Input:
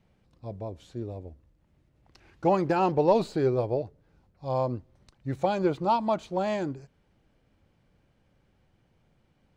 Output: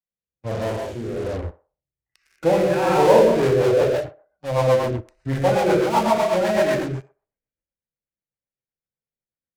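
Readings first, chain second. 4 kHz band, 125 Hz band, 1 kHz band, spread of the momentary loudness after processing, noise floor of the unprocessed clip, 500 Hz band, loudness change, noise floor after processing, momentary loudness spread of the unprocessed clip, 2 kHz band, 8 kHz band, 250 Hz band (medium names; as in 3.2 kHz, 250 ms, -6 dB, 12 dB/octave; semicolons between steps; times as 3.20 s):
+12.0 dB, +7.5 dB, +6.0 dB, 16 LU, -69 dBFS, +10.0 dB, +8.0 dB, under -85 dBFS, 17 LU, +13.0 dB, no reading, +6.0 dB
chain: hum notches 50/100/150/200/250/300/350/400 Hz; spectral noise reduction 19 dB; graphic EQ 500/2000/4000 Hz +5/+11/-10 dB; gated-style reverb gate 240 ms flat, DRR -4 dB; in parallel at -7.5 dB: fuzz box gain 42 dB, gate -46 dBFS; on the sum: harmonic-percussive split percussive -5 dB; on a send: band-passed feedback delay 62 ms, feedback 45%, band-pass 830 Hz, level -12 dB; on the sum: rotary cabinet horn 1.2 Hz, later 8 Hz, at 3.03 s; three bands expanded up and down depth 40%; trim -1 dB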